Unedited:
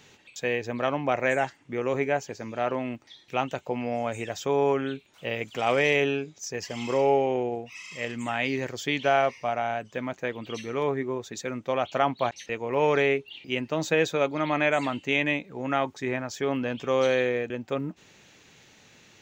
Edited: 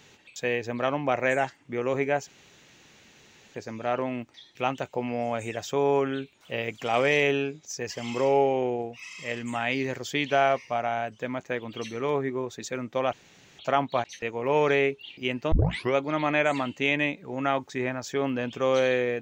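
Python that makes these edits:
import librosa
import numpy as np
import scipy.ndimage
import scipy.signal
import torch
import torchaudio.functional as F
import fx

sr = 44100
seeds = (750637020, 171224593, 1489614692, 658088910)

y = fx.edit(x, sr, fx.insert_room_tone(at_s=2.27, length_s=1.27),
    fx.insert_room_tone(at_s=11.86, length_s=0.46),
    fx.tape_start(start_s=13.79, length_s=0.44), tone=tone)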